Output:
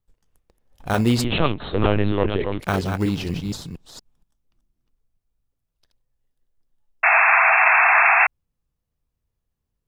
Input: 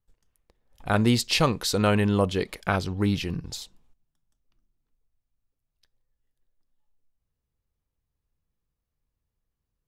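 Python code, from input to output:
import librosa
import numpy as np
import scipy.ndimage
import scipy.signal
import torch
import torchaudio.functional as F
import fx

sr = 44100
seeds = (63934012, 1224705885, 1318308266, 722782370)

p1 = fx.reverse_delay(x, sr, ms=235, wet_db=-6)
p2 = fx.sample_hold(p1, sr, seeds[0], rate_hz=2400.0, jitter_pct=0)
p3 = p1 + (p2 * librosa.db_to_amplitude(-8.5))
p4 = fx.lpc_vocoder(p3, sr, seeds[1], excitation='pitch_kept', order=10, at=(1.24, 2.6))
y = fx.spec_paint(p4, sr, seeds[2], shape='noise', start_s=7.03, length_s=1.24, low_hz=640.0, high_hz=2700.0, level_db=-15.0)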